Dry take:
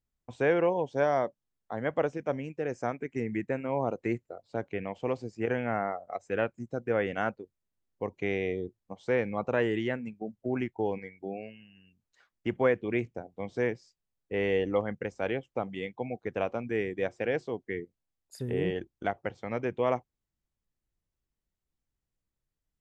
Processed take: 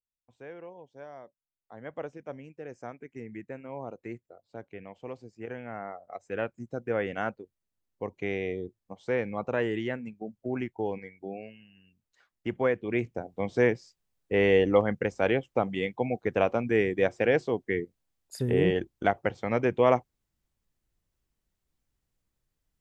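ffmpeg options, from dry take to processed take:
ffmpeg -i in.wav -af "volume=6dB,afade=type=in:start_time=1.26:duration=0.76:silence=0.316228,afade=type=in:start_time=5.71:duration=0.95:silence=0.398107,afade=type=in:start_time=12.84:duration=0.51:silence=0.446684" out.wav

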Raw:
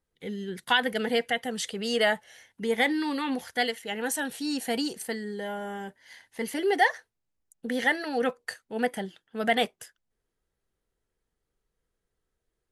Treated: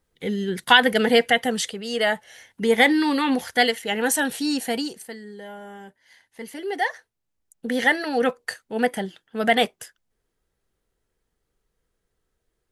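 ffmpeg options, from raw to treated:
ffmpeg -i in.wav -af "volume=29dB,afade=type=out:start_time=1.49:duration=0.33:silence=0.281838,afade=type=in:start_time=1.82:duration=0.84:silence=0.316228,afade=type=out:start_time=4.32:duration=0.74:silence=0.237137,afade=type=in:start_time=6.65:duration=1.18:silence=0.316228" out.wav

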